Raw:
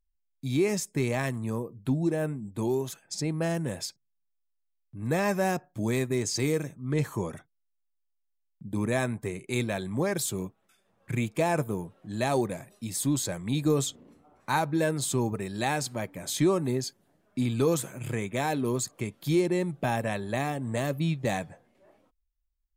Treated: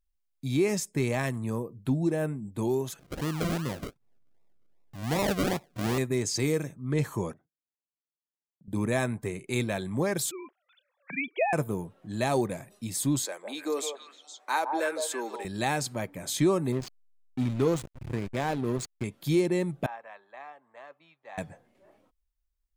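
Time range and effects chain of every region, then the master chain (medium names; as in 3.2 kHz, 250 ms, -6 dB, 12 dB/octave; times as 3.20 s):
2.99–5.98 s: upward compressor, threshold -46 dBFS + Chebyshev low-pass 9.3 kHz, order 6 + decimation with a swept rate 40×, swing 60% 2.6 Hz
7.33–8.68 s: compression 2.5:1, threshold -59 dBFS + band-pass filter 270 Hz, Q 0.84
10.31–11.53 s: formants replaced by sine waves + tilt EQ +4 dB/octave
13.25–15.45 s: Bessel high-pass 490 Hz, order 8 + treble shelf 4.9 kHz -4 dB + repeats whose band climbs or falls 157 ms, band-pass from 700 Hz, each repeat 1.4 oct, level -2 dB
16.72–19.04 s: treble shelf 11 kHz -8.5 dB + hysteresis with a dead band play -28 dBFS
19.86–21.38 s: ladder band-pass 1.2 kHz, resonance 25% + three bands expanded up and down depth 40%
whole clip: none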